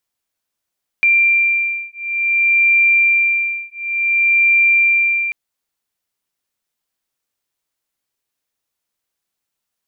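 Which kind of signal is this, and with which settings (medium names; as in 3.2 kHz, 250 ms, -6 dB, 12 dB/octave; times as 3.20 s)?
beating tones 2.37 kHz, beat 0.56 Hz, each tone -15 dBFS 4.29 s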